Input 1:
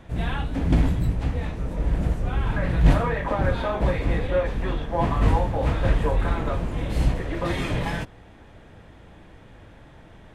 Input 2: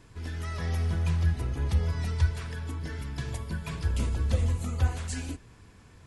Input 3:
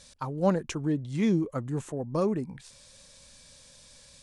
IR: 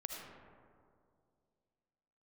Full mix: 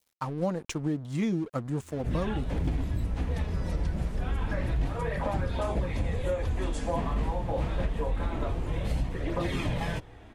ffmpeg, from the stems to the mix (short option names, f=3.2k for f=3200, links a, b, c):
-filter_complex "[0:a]flanger=delay=0.1:depth=5.8:regen=-50:speed=0.27:shape=triangular,adelay=1950,volume=2dB[a];[1:a]adelay=1650,volume=-4.5dB[b];[2:a]bandreject=f=400:w=12,aeval=exprs='sgn(val(0))*max(abs(val(0))-0.00447,0)':c=same,volume=2.5dB,asplit=2[c][d];[d]apad=whole_len=340321[e];[b][e]sidechaincompress=threshold=-41dB:ratio=8:attack=16:release=484[f];[a][f][c]amix=inputs=3:normalize=0,adynamicequalizer=threshold=0.00562:dfrequency=1500:dqfactor=1.9:tfrequency=1500:tqfactor=1.9:attack=5:release=100:ratio=0.375:range=2:mode=cutabove:tftype=bell,acompressor=threshold=-25dB:ratio=6"